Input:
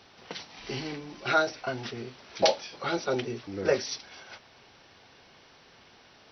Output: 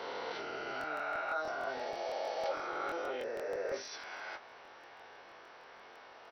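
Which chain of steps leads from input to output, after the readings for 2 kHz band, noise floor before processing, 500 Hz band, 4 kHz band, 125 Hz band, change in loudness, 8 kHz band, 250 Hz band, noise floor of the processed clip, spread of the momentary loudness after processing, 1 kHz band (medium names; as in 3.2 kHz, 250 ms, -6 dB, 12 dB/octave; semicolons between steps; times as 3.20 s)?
-5.5 dB, -57 dBFS, -7.5 dB, -12.5 dB, -21.5 dB, -8.0 dB, no reading, -13.5 dB, -55 dBFS, 17 LU, -4.5 dB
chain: reverse spectral sustain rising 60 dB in 2.40 s; reverse; compression 10:1, threshold -34 dBFS, peak gain reduction 20 dB; reverse; three-band isolator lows -20 dB, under 400 Hz, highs -14 dB, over 2 kHz; doubling 20 ms -6 dB; crackling interface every 0.16 s, samples 1024, repeat, from 0.79 s; trim +1.5 dB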